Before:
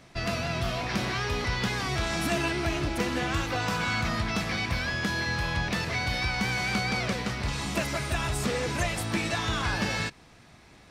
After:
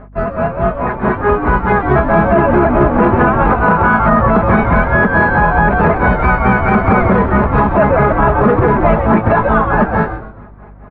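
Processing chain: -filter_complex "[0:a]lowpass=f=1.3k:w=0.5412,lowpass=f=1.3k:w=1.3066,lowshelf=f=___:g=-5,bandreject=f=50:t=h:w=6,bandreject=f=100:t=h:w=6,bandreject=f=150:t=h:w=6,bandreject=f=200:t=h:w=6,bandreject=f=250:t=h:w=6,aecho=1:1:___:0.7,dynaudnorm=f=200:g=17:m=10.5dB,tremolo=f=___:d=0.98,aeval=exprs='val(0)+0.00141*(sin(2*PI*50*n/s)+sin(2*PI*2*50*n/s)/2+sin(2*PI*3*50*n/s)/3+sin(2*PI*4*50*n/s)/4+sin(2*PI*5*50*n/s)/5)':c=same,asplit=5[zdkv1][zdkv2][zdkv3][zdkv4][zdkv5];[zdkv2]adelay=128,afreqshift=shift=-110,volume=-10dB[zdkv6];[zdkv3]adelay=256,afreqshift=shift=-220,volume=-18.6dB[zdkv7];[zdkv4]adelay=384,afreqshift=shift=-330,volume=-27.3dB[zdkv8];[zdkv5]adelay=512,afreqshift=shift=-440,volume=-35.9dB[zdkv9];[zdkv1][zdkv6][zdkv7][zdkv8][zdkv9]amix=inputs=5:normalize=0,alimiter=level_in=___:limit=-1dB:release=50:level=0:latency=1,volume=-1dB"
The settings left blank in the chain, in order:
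340, 4.8, 4.6, 21dB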